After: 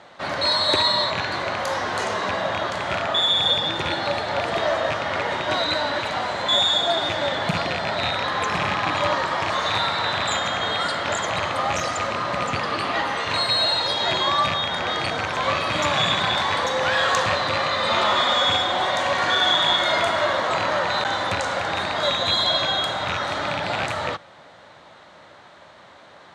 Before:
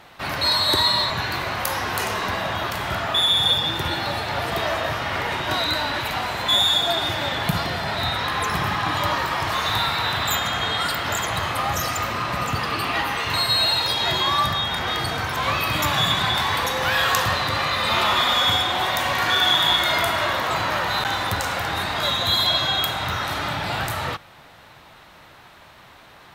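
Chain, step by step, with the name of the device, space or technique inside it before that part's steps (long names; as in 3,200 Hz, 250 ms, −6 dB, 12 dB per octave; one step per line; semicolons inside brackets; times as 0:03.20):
car door speaker with a rattle (loose part that buzzes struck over −28 dBFS, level −11 dBFS; loudspeaker in its box 110–7,600 Hz, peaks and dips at 130 Hz −5 dB, 570 Hz +7 dB, 2,600 Hz −6 dB, 5,300 Hz −4 dB)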